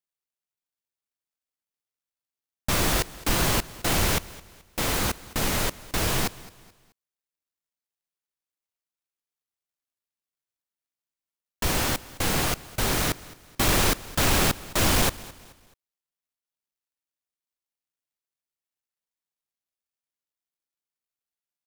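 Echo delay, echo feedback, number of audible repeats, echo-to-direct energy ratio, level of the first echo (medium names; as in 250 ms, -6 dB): 215 ms, 38%, 2, -19.5 dB, -20.0 dB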